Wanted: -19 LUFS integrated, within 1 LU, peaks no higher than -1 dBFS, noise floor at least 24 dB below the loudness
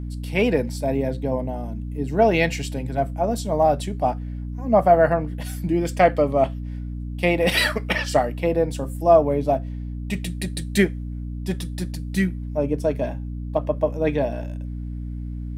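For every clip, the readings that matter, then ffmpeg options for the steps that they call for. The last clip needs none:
hum 60 Hz; highest harmonic 300 Hz; hum level -28 dBFS; loudness -23.0 LUFS; peak level -4.5 dBFS; loudness target -19.0 LUFS
-> -af "bandreject=f=60:t=h:w=4,bandreject=f=120:t=h:w=4,bandreject=f=180:t=h:w=4,bandreject=f=240:t=h:w=4,bandreject=f=300:t=h:w=4"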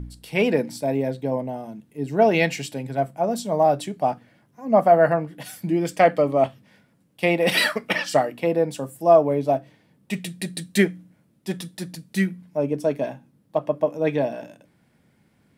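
hum not found; loudness -22.5 LUFS; peak level -5.0 dBFS; loudness target -19.0 LUFS
-> -af "volume=1.5"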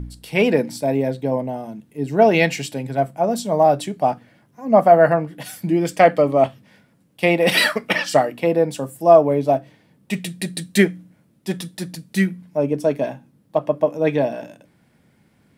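loudness -19.0 LUFS; peak level -1.5 dBFS; noise floor -59 dBFS

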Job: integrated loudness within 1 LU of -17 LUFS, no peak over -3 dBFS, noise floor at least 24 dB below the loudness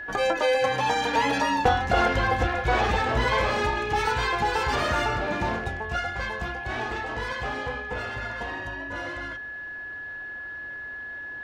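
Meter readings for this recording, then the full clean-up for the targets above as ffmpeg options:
steady tone 1.7 kHz; tone level -34 dBFS; loudness -26.5 LUFS; peak level -10.5 dBFS; loudness target -17.0 LUFS
-> -af "bandreject=f=1700:w=30"
-af "volume=2.99,alimiter=limit=0.708:level=0:latency=1"

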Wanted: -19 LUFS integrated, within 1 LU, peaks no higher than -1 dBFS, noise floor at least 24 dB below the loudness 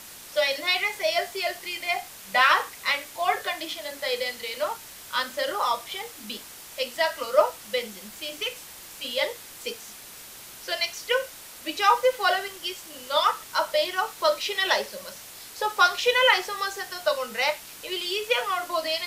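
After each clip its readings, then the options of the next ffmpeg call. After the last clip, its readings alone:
noise floor -44 dBFS; noise floor target -50 dBFS; loudness -25.5 LUFS; peak level -5.0 dBFS; loudness target -19.0 LUFS
-> -af "afftdn=nr=6:nf=-44"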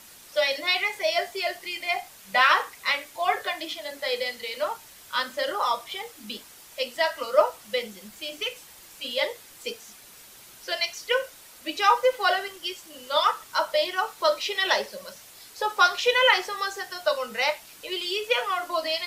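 noise floor -49 dBFS; noise floor target -50 dBFS
-> -af "afftdn=nr=6:nf=-49"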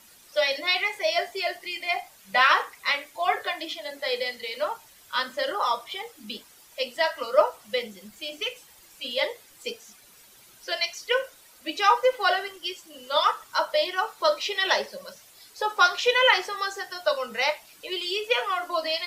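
noise floor -54 dBFS; loudness -25.5 LUFS; peak level -4.5 dBFS; loudness target -19.0 LUFS
-> -af "volume=2.11,alimiter=limit=0.891:level=0:latency=1"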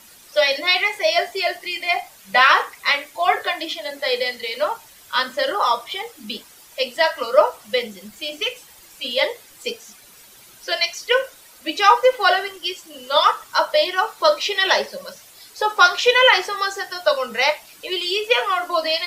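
loudness -19.5 LUFS; peak level -1.0 dBFS; noise floor -47 dBFS

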